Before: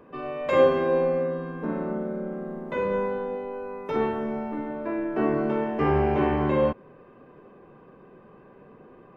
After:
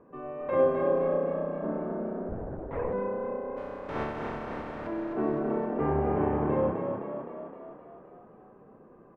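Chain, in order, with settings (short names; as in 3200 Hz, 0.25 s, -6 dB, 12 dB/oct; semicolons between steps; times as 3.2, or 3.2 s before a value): 3.56–4.86 spectral contrast lowered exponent 0.27; LPF 1300 Hz 12 dB/oct; on a send: frequency-shifting echo 0.259 s, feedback 59%, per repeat +31 Hz, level -6 dB; 2.29–2.93 on the sum: LPC vocoder at 8 kHz whisper; gain -5 dB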